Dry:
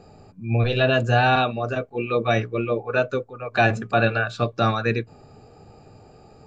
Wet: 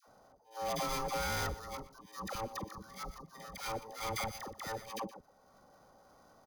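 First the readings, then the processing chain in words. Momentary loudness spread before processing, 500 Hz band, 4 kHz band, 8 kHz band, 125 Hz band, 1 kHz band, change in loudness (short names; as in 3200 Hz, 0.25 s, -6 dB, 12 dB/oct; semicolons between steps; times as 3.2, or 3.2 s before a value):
9 LU, -20.0 dB, -12.5 dB, n/a, -23.5 dB, -15.0 dB, -17.5 dB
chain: sample sorter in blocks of 8 samples; gate -43 dBFS, range -17 dB; low shelf 65 Hz +5.5 dB; level quantiser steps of 23 dB; auto swell 0.733 s; compressor 10:1, threshold -37 dBFS, peak gain reduction 16.5 dB; ring modulator 670 Hz; dispersion lows, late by 79 ms, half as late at 780 Hz; soft clip -39 dBFS, distortion -15 dB; echo 0.121 s -17 dB; gain +9.5 dB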